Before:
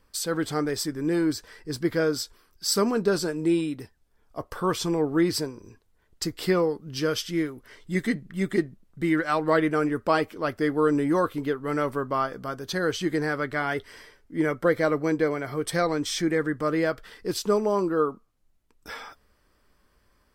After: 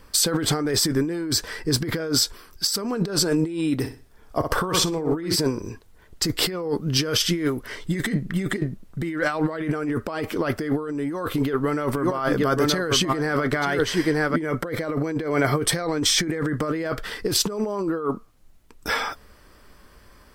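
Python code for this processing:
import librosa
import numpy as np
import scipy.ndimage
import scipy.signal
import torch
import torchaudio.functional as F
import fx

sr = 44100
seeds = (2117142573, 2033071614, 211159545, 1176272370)

y = fx.room_flutter(x, sr, wall_m=10.5, rt60_s=0.35, at=(3.81, 5.35), fade=0.02)
y = fx.echo_single(y, sr, ms=929, db=-9.5, at=(11.04, 14.36))
y = fx.over_compress(y, sr, threshold_db=-32.0, ratio=-1.0)
y = F.gain(torch.from_numpy(y), 8.0).numpy()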